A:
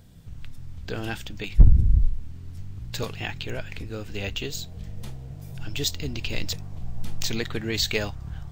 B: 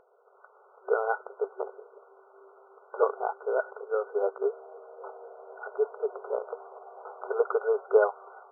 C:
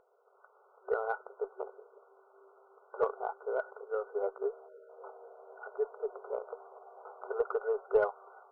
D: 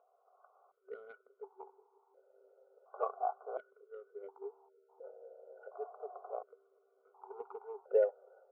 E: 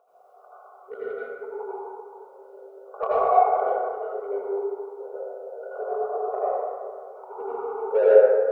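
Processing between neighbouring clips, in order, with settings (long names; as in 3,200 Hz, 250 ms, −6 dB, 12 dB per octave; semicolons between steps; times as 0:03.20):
brick-wall band-pass 380–1,500 Hz; automatic gain control gain up to 6 dB; level +4 dB
time-frequency box erased 0:04.68–0:04.89, 630–1,300 Hz; harmonic generator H 2 −23 dB, 8 −40 dB, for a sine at −9.5 dBFS; level −6 dB
formant filter that steps through the vowels 1.4 Hz; level +5.5 dB
in parallel at −3 dB: soft clipping −28 dBFS, distortion −10 dB; on the sum: convolution reverb RT60 2.2 s, pre-delay 72 ms, DRR −9.5 dB; level +3 dB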